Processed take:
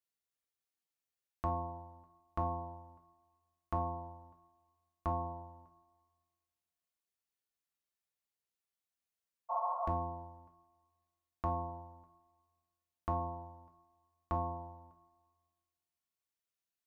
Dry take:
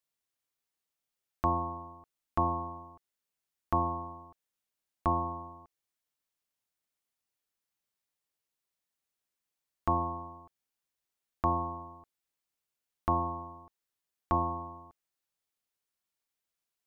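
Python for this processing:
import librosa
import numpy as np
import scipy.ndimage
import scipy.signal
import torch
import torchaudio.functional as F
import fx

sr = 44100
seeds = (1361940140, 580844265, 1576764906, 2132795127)

y = fx.rev_double_slope(x, sr, seeds[0], early_s=0.32, late_s=1.7, knee_db=-20, drr_db=3.0)
y = fx.spec_repair(y, sr, seeds[1], start_s=9.53, length_s=0.33, low_hz=530.0, high_hz=1400.0, source='after')
y = y * librosa.db_to_amplitude(-8.0)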